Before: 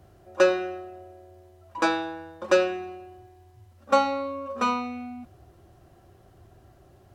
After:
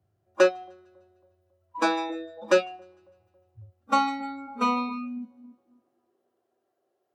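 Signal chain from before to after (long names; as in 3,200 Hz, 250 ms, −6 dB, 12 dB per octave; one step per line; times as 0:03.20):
high-pass filter sweep 100 Hz → 440 Hz, 0:04.33–0:06.35
echo with a time of its own for lows and highs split 930 Hz, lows 275 ms, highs 151 ms, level −11 dB
noise reduction from a noise print of the clip's start 22 dB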